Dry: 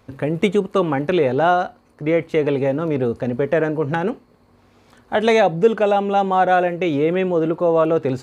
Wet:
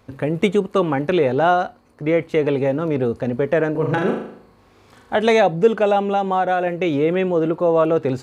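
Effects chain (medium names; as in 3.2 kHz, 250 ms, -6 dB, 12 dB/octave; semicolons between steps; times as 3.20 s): 3.71–5.14 s: flutter echo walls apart 6.7 m, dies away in 0.65 s; 6.12–6.67 s: compression, threshold -15 dBFS, peak gain reduction 4.5 dB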